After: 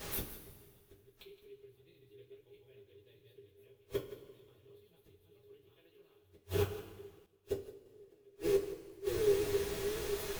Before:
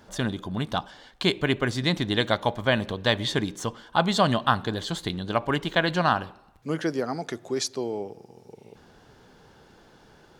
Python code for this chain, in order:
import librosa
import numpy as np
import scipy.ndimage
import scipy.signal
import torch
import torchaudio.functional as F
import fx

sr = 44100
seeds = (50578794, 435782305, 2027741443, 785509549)

p1 = fx.reverse_delay_fb(x, sr, ms=638, feedback_pct=50, wet_db=-2.5)
p2 = fx.bass_treble(p1, sr, bass_db=-7, treble_db=3, at=(5.7, 6.21))
p3 = fx.leveller(p2, sr, passes=1)
p4 = fx.curve_eq(p3, sr, hz=(100.0, 240.0, 410.0, 630.0, 1700.0, 2500.0, 6900.0, 12000.0), db=(0, -24, 2, -25, -25, -9, -30, 9))
p5 = fx.dmg_noise_colour(p4, sr, seeds[0], colour='pink', level_db=-50.0)
p6 = fx.gate_flip(p5, sr, shuts_db=-28.0, range_db=-41)
p7 = p6 + fx.echo_single(p6, sr, ms=168, db=-14.5, dry=0)
p8 = fx.rev_double_slope(p7, sr, seeds[1], early_s=0.23, late_s=1.8, knee_db=-18, drr_db=-6.5)
y = fx.band_widen(p8, sr, depth_pct=40, at=(7.26, 7.86))